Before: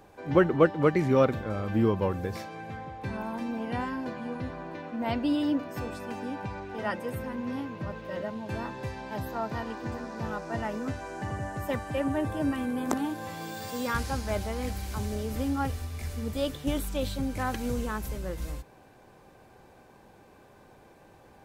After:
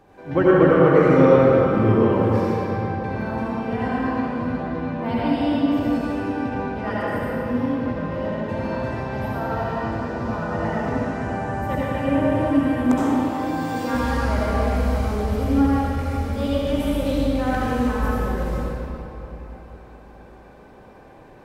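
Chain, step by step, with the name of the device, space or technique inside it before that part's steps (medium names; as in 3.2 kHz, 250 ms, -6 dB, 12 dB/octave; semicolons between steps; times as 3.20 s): swimming-pool hall (reverberation RT60 3.6 s, pre-delay 62 ms, DRR -8 dB; treble shelf 4.4 kHz -8 dB)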